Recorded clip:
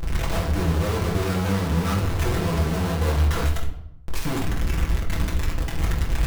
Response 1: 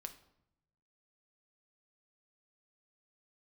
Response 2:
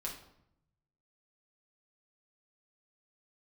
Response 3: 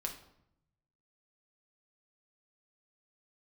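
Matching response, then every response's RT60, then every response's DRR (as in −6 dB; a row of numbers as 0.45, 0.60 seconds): 2; 0.75, 0.75, 0.75 seconds; 6.0, −3.0, 1.0 decibels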